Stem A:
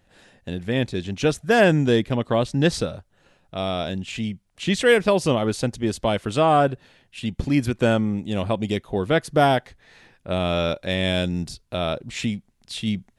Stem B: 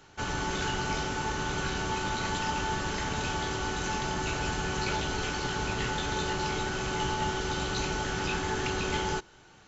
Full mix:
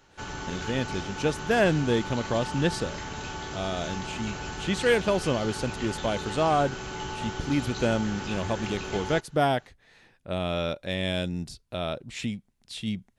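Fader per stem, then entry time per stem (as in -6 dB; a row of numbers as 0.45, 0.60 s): -6.0, -4.5 dB; 0.00, 0.00 s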